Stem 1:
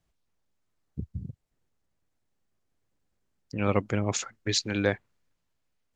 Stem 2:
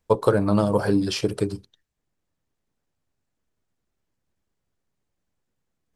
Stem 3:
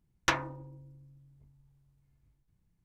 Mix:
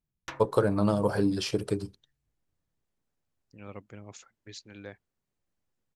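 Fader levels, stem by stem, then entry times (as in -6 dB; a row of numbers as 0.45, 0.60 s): -18.5, -5.0, -13.5 dB; 0.00, 0.30, 0.00 s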